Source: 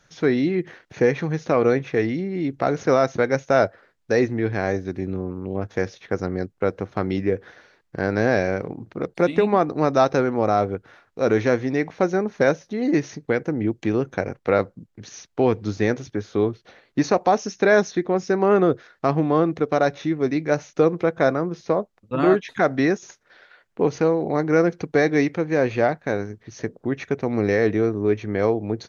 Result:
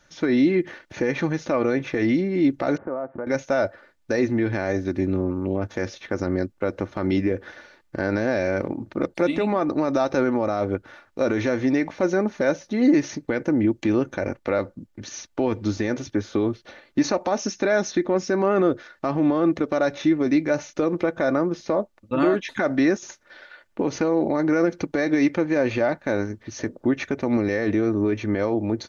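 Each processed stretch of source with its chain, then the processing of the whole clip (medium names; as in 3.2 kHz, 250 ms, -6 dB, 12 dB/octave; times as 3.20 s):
2.77–3.27 s: Bessel low-pass 830 Hz, order 6 + tilt EQ +2.5 dB/octave + compression 2.5:1, threshold -34 dBFS
whole clip: level rider gain up to 4.5 dB; peak limiter -12.5 dBFS; comb 3.4 ms, depth 46%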